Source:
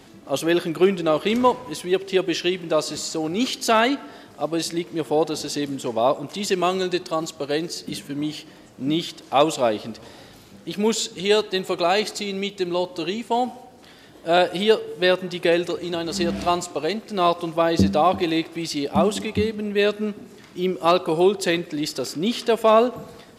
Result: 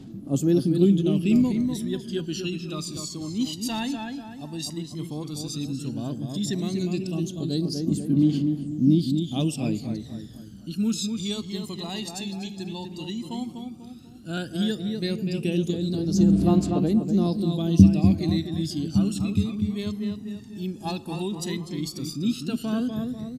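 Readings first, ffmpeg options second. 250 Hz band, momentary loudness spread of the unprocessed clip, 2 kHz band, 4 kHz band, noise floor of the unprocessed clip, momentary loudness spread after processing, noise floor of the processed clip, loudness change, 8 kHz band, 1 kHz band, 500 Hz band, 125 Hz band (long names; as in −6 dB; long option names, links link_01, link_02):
+2.5 dB, 10 LU, −13.5 dB, −7.5 dB, −47 dBFS, 14 LU, −42 dBFS, −3.0 dB, −4.5 dB, −16.5 dB, −11.5 dB, +7.5 dB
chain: -filter_complex "[0:a]equalizer=frequency=125:width_type=o:width=1:gain=7,equalizer=frequency=250:width_type=o:width=1:gain=8,equalizer=frequency=500:width_type=o:width=1:gain=-10,equalizer=frequency=1000:width_type=o:width=1:gain=-10,equalizer=frequency=2000:width_type=o:width=1:gain=-11,asplit=2[link_01][link_02];[link_02]adelay=246,lowpass=frequency=3100:poles=1,volume=-5dB,asplit=2[link_03][link_04];[link_04]adelay=246,lowpass=frequency=3100:poles=1,volume=0.46,asplit=2[link_05][link_06];[link_06]adelay=246,lowpass=frequency=3100:poles=1,volume=0.46,asplit=2[link_07][link_08];[link_08]adelay=246,lowpass=frequency=3100:poles=1,volume=0.46,asplit=2[link_09][link_10];[link_10]adelay=246,lowpass=frequency=3100:poles=1,volume=0.46,asplit=2[link_11][link_12];[link_12]adelay=246,lowpass=frequency=3100:poles=1,volume=0.46[link_13];[link_01][link_03][link_05][link_07][link_09][link_11][link_13]amix=inputs=7:normalize=0,aphaser=in_gain=1:out_gain=1:delay=1.2:decay=0.73:speed=0.12:type=triangular,volume=-7.5dB"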